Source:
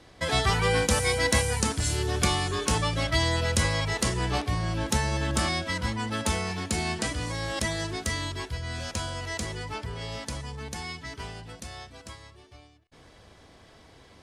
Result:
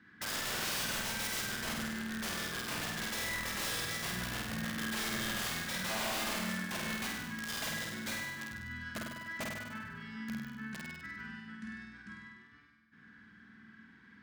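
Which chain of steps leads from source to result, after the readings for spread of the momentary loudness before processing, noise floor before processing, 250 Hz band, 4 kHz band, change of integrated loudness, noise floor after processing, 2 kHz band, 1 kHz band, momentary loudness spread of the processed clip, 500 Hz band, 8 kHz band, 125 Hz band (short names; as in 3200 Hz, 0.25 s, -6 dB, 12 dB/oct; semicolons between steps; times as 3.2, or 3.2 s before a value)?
14 LU, -54 dBFS, -7.5 dB, -7.5 dB, -9.0 dB, -59 dBFS, -5.5 dB, -11.5 dB, 12 LU, -15.0 dB, -8.5 dB, -17.0 dB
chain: in parallel at -2 dB: compressor 10:1, threshold -38 dBFS, peak gain reduction 20 dB; on the sum: double band-pass 590 Hz, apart 2.9 oct; wrapped overs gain 34 dB; flutter echo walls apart 8.5 m, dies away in 1.1 s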